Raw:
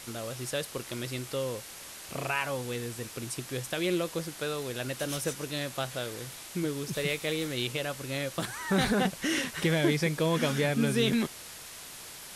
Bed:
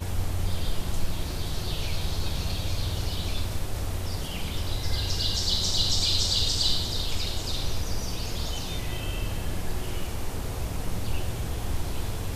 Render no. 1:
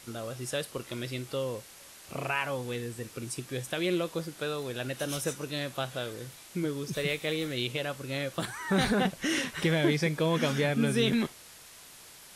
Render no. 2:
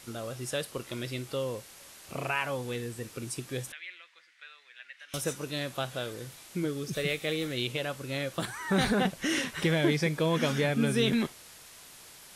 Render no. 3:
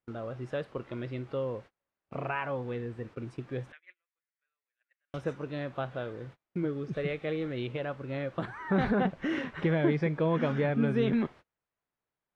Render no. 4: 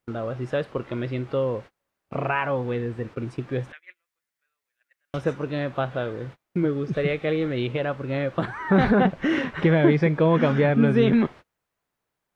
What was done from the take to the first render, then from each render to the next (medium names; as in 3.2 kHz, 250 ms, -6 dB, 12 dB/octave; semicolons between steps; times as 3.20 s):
noise print and reduce 6 dB
3.72–5.14 s: ladder band-pass 2.2 kHz, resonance 60%; 6.68–7.43 s: Butterworth band-stop 960 Hz, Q 6.1
low-pass 1.6 kHz 12 dB/octave; gate -47 dBFS, range -33 dB
trim +8.5 dB